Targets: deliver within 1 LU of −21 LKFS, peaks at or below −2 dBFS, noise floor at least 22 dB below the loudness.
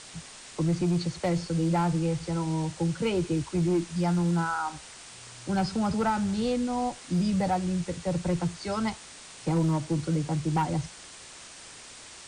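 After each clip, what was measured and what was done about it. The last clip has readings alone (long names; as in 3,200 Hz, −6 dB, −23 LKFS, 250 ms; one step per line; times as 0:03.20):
share of clipped samples 0.9%; peaks flattened at −20.0 dBFS; background noise floor −47 dBFS; target noise floor −51 dBFS; integrated loudness −28.5 LKFS; sample peak −20.0 dBFS; target loudness −21.0 LKFS
→ clipped peaks rebuilt −20 dBFS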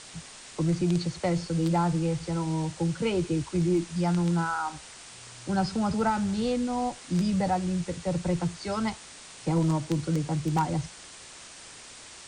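share of clipped samples 0.0%; background noise floor −47 dBFS; target noise floor −50 dBFS
→ broadband denoise 6 dB, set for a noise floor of −47 dBFS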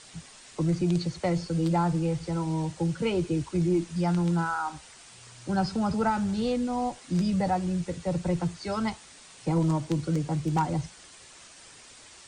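background noise floor −51 dBFS; integrated loudness −28.0 LKFS; sample peak −11.5 dBFS; target loudness −21.0 LKFS
→ level +7 dB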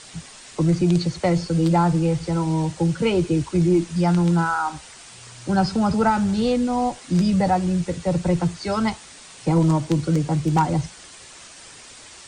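integrated loudness −21.0 LKFS; sample peak −4.5 dBFS; background noise floor −44 dBFS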